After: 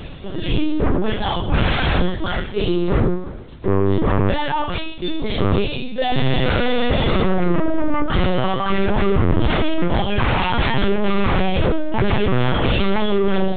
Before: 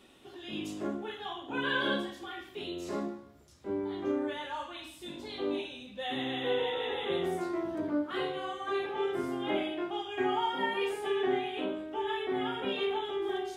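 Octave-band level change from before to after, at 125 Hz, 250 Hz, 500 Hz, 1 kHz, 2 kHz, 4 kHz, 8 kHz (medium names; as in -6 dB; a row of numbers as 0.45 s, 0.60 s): +30.0 dB, +15.0 dB, +11.5 dB, +12.5 dB, +12.0 dB, +11.5 dB, under -20 dB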